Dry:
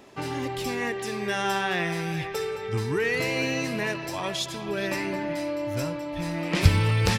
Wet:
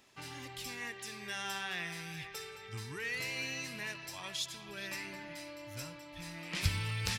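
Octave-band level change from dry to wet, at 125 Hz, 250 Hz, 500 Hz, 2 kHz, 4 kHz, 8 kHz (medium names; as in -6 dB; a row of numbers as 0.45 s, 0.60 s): -15.0 dB, -18.5 dB, -20.0 dB, -10.0 dB, -7.5 dB, -6.0 dB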